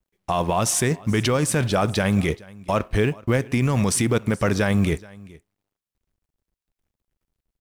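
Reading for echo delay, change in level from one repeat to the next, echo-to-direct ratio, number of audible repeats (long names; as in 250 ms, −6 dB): 426 ms, repeats not evenly spaced, −22.5 dB, 1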